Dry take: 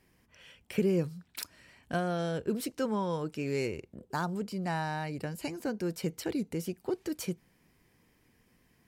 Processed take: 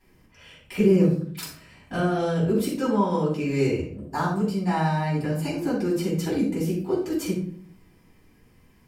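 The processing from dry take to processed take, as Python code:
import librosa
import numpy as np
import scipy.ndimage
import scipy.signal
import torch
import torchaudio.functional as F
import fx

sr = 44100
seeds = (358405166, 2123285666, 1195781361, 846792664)

y = fx.room_shoebox(x, sr, seeds[0], volume_m3=550.0, walls='furnished', distance_m=9.3)
y = y * librosa.db_to_amplitude(-5.0)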